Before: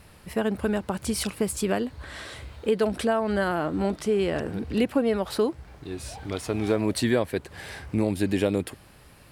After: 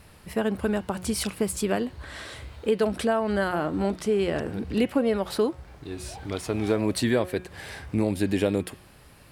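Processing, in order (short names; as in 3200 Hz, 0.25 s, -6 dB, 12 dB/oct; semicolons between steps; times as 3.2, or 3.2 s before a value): de-hum 182 Hz, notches 20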